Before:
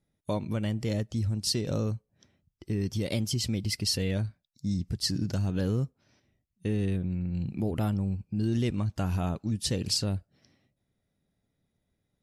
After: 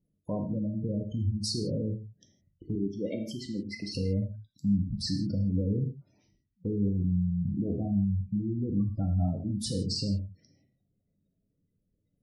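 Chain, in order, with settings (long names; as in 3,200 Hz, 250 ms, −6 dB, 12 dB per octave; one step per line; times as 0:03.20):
gate on every frequency bin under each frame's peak −15 dB strong
0:02.75–0:03.95: three-way crossover with the lows and the highs turned down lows −18 dB, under 220 Hz, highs −15 dB, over 2,500 Hz
0:05.57–0:06.88: all-pass dispersion highs, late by 90 ms, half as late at 2,600 Hz
auto-filter notch saw down 0.67 Hz 770–1,700 Hz
brickwall limiter −24.5 dBFS, peak gain reduction 8.5 dB
dynamic equaliser 260 Hz, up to +3 dB, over −49 dBFS, Q 2.1
reverb whose tail is shaped and stops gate 190 ms falling, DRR 2.5 dB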